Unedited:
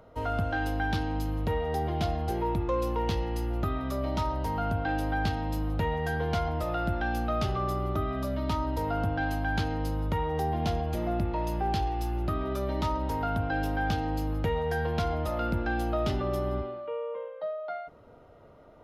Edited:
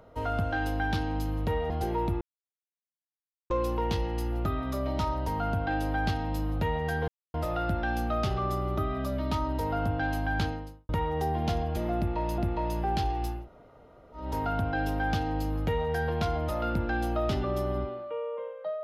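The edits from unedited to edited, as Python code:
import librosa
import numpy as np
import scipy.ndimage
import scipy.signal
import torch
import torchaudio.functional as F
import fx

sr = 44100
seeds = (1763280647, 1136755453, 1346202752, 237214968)

y = fx.edit(x, sr, fx.cut(start_s=1.7, length_s=0.47),
    fx.insert_silence(at_s=2.68, length_s=1.29),
    fx.silence(start_s=6.26, length_s=0.26),
    fx.fade_out_span(start_s=9.64, length_s=0.43, curve='qua'),
    fx.repeat(start_s=11.15, length_s=0.41, count=2),
    fx.room_tone_fill(start_s=12.14, length_s=0.87, crossfade_s=0.24), tone=tone)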